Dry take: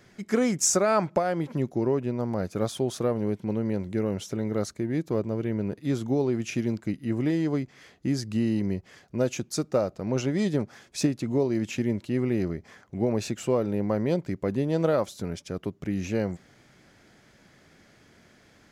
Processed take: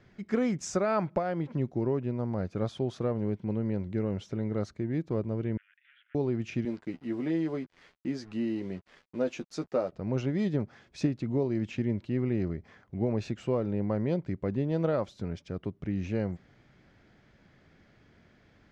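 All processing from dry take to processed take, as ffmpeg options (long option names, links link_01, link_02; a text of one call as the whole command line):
ffmpeg -i in.wav -filter_complex "[0:a]asettb=1/sr,asplit=3[link_01][link_02][link_03];[link_01]atrim=end=5.574[link_04];[link_02]atrim=start=5.57:end=6.15,asetpts=PTS-STARTPTS,afade=type=in:duration=0.004:curve=qsin,afade=type=out:start_time=0.576:duration=0.004:curve=qsin,acompressor=threshold=-29dB:ratio=2.5:attack=3.2:release=140:knee=1:detection=peak,volume=32dB,asoftclip=hard,volume=-32dB,asuperpass=centerf=2200:order=12:qfactor=1.2[link_05];[link_03]atrim=start=6.146[link_06];[link_04][link_05]acrossfade=duration=0.004:curve1=hsin:curve2=qsin[link_07];[link_07][link_06]acrossfade=duration=0.004:curve1=qsin:curve2=hsin,asettb=1/sr,asplit=3[link_08][link_09][link_10];[link_08]atrim=end=6.654[link_11];[link_09]atrim=start=6.65:end=9.92,asetpts=PTS-STARTPTS,afade=type=in:duration=0.004:curve=qsin,afade=type=out:start_time=3.266:duration=0.004:curve=qsin,highpass=240,acrusher=bits=7:mix=0:aa=0.5,asplit=2[link_12][link_13];[link_13]adelay=12,volume=-7dB[link_14];[link_12][link_14]amix=inputs=2:normalize=0,atrim=end_sample=144207[link_15];[link_10]atrim=start=9.916[link_16];[link_11][link_15]acrossfade=duration=0.004:curve1=hsin:curve2=qsin[link_17];[link_17][link_16]acrossfade=duration=0.004:curve1=qsin:curve2=hsin,lowpass=3800,lowshelf=frequency=140:gain=8.5,volume=-5.5dB" out.wav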